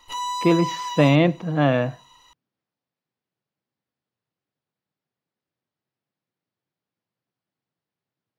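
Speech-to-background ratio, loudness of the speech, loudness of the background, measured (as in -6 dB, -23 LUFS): 9.0 dB, -20.5 LUFS, -29.5 LUFS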